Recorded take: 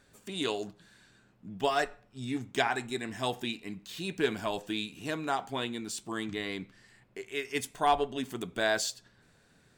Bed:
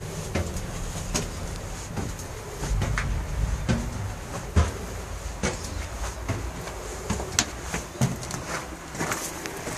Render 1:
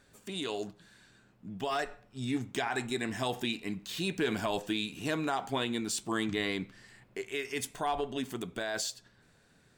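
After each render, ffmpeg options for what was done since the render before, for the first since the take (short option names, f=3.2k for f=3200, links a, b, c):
-af "alimiter=level_in=0.5dB:limit=-24dB:level=0:latency=1:release=59,volume=-0.5dB,dynaudnorm=f=210:g=21:m=4dB"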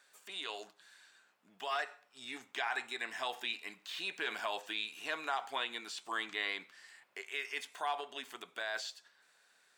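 -filter_complex "[0:a]highpass=880,acrossover=split=4200[a][b];[b]acompressor=threshold=-54dB:ratio=4:attack=1:release=60[c];[a][c]amix=inputs=2:normalize=0"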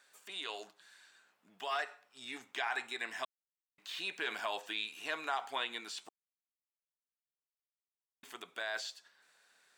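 -filter_complex "[0:a]asplit=5[a][b][c][d][e];[a]atrim=end=3.25,asetpts=PTS-STARTPTS,afade=t=out:st=3.246:d=0.004:c=hsin[f];[b]atrim=start=3.25:end=3.78,asetpts=PTS-STARTPTS,volume=0[g];[c]atrim=start=3.78:end=6.09,asetpts=PTS-STARTPTS,afade=t=in:d=0.004:c=hsin,afade=t=out:st=2.306:d=0.004:c=hsin[h];[d]atrim=start=6.09:end=8.23,asetpts=PTS-STARTPTS,volume=0[i];[e]atrim=start=8.23,asetpts=PTS-STARTPTS,afade=t=in:d=0.004:c=hsin[j];[f][g][h][i][j]concat=n=5:v=0:a=1"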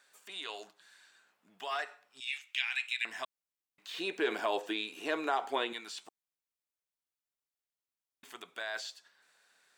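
-filter_complex "[0:a]asettb=1/sr,asplit=3[a][b][c];[a]atrim=end=2.204[d];[b]atrim=start=2.2:end=3.05,asetpts=PTS-STARTPTS,afade=t=in:d=0.004:c=qsin,afade=t=out:st=0.846:d=0.004:c=qsin,highpass=f=2.6k:t=q:w=4.2[e];[c]atrim=start=3.046[f];[d][e]acrossfade=d=0.004:c1=hsin:c2=qsin[g];[g][f]acrossfade=d=0.004:c1=qsin:c2=hsin,asettb=1/sr,asplit=3[h][i][j];[h]atrim=end=3.944[k];[i]atrim=start=3.94:end=5.73,asetpts=PTS-STARTPTS,afade=t=in:d=0.004:c=qsin,afade=t=out:st=1.786:d=0.004:c=qsin,equalizer=f=360:w=0.8:g=14.5[l];[j]atrim=start=5.726[m];[k][l]acrossfade=d=0.004:c1=hsin:c2=qsin[n];[n][m]acrossfade=d=0.004:c1=qsin:c2=hsin"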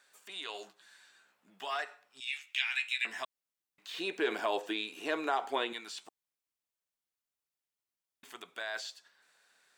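-filter_complex "[0:a]asettb=1/sr,asplit=3[a][b][c];[a]atrim=end=0.534[d];[b]atrim=start=0.53:end=1.71,asetpts=PTS-STARTPTS,afade=t=in:d=0.004:c=qsin,afade=t=out:st=1.176:d=0.004:c=qsin,asplit=2[e][f];[f]adelay=15,volume=-6dB[g];[e][g]amix=inputs=2:normalize=0,atrim=end_sample=52038[h];[c]atrim=start=1.706[i];[d][h]acrossfade=d=0.004:c1=hsin:c2=qsin[j];[j][i]acrossfade=d=0.004:c1=qsin:c2=hsin,asettb=1/sr,asplit=3[k][l][m];[k]atrim=end=2.374[n];[l]atrim=start=2.37:end=3.23,asetpts=PTS-STARTPTS,afade=t=in:d=0.004:c=qsin,afade=t=out:st=0.856:d=0.004:c=qsin,asplit=2[o][p];[p]adelay=14,volume=-5dB[q];[o][q]amix=inputs=2:normalize=0,atrim=end_sample=37926[r];[m]atrim=start=3.226[s];[n][r]acrossfade=d=0.004:c1=hsin:c2=qsin[t];[t][s]acrossfade=d=0.004:c1=qsin:c2=hsin"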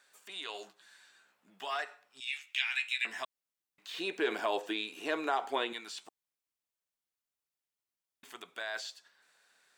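-af anull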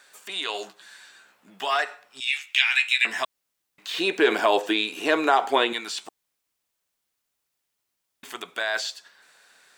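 -af "volume=12dB"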